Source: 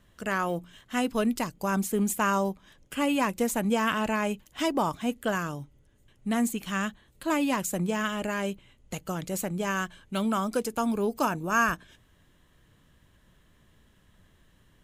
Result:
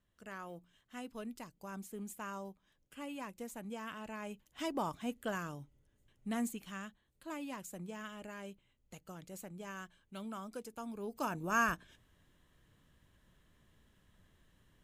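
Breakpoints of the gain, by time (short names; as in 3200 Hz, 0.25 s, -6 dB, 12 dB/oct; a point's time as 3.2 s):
4.03 s -18.5 dB
4.76 s -10 dB
6.44 s -10 dB
6.87 s -17 dB
10.94 s -17 dB
11.43 s -7 dB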